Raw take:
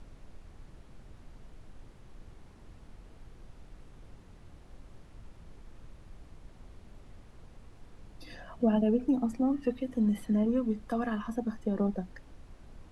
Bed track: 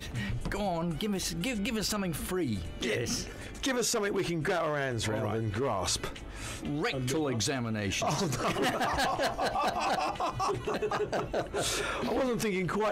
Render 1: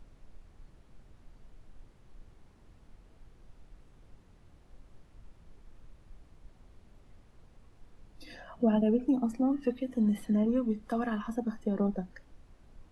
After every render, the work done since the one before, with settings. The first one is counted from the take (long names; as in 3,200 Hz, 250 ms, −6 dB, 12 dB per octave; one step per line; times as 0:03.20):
noise reduction from a noise print 6 dB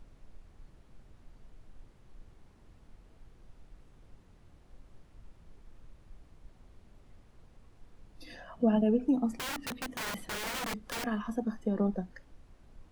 0:09.31–0:11.04: wrap-around overflow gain 31.5 dB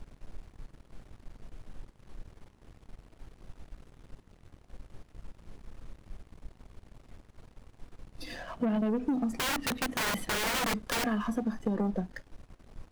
leveller curve on the samples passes 2
downward compressor, threshold −27 dBFS, peak gain reduction 7.5 dB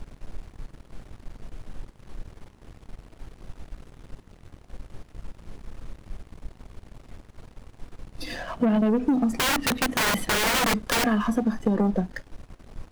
level +7.5 dB